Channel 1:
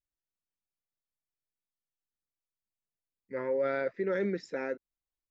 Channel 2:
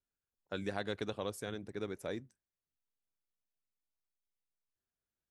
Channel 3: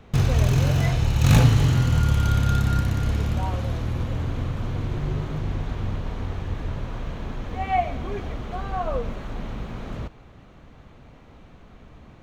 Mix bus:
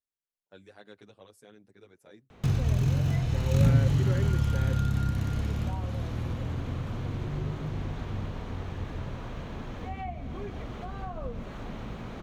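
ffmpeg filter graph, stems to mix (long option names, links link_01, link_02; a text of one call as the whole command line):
ffmpeg -i stem1.wav -i stem2.wav -i stem3.wav -filter_complex "[0:a]volume=-6dB[link_01];[1:a]asplit=2[link_02][link_03];[link_03]adelay=8.7,afreqshift=-1.6[link_04];[link_02][link_04]amix=inputs=2:normalize=1,volume=-10dB[link_05];[2:a]acrossover=split=280[link_06][link_07];[link_07]acompressor=threshold=-37dB:ratio=4[link_08];[link_06][link_08]amix=inputs=2:normalize=0,adelay=2300,volume=-3dB[link_09];[link_01][link_05][link_09]amix=inputs=3:normalize=0,lowshelf=frequency=62:gain=-9" out.wav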